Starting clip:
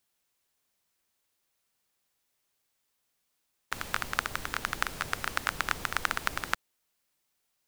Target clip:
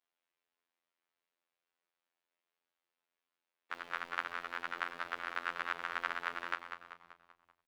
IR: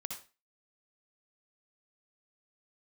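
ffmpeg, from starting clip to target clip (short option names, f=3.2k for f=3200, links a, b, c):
-filter_complex "[0:a]acrossover=split=260 3600:gain=0.0708 1 0.0891[a][b][c];[a][b][c]amix=inputs=3:normalize=0,asplit=7[d][e][f][g][h][i][j];[e]adelay=193,afreqshift=-53,volume=-8dB[k];[f]adelay=386,afreqshift=-106,volume=-14.2dB[l];[g]adelay=579,afreqshift=-159,volume=-20.4dB[m];[h]adelay=772,afreqshift=-212,volume=-26.6dB[n];[i]adelay=965,afreqshift=-265,volume=-32.8dB[o];[j]adelay=1158,afreqshift=-318,volume=-39dB[p];[d][k][l][m][n][o][p]amix=inputs=7:normalize=0,afftfilt=real='hypot(re,im)*cos(PI*b)':imag='0':win_size=2048:overlap=0.75,volume=-3dB"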